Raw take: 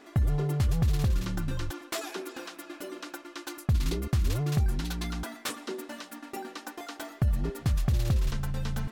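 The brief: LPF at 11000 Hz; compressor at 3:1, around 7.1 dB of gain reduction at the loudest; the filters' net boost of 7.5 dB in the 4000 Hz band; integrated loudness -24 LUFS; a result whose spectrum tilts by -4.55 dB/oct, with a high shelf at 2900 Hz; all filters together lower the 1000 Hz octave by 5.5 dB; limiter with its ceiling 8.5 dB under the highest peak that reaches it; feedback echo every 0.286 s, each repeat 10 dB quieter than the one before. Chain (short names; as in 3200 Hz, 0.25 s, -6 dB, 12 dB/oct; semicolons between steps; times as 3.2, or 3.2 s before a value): LPF 11000 Hz; bell 1000 Hz -9 dB; high shelf 2900 Hz +4 dB; bell 4000 Hz +6.5 dB; compressor 3:1, threshold -31 dBFS; limiter -28 dBFS; feedback echo 0.286 s, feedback 32%, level -10 dB; gain +13.5 dB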